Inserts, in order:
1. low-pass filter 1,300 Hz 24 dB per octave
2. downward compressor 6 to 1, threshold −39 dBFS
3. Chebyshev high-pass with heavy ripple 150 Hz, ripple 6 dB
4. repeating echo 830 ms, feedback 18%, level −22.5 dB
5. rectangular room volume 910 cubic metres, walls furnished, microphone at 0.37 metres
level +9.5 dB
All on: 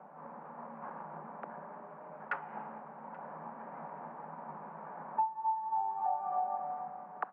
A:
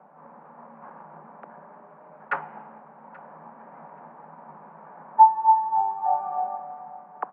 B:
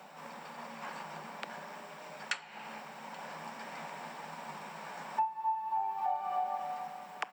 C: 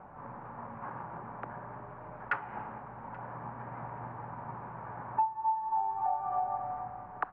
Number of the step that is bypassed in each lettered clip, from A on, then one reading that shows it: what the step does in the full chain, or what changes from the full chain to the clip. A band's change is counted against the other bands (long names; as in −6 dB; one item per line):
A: 2, average gain reduction 2.5 dB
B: 1, 2 kHz band +5.0 dB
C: 3, 125 Hz band +8.5 dB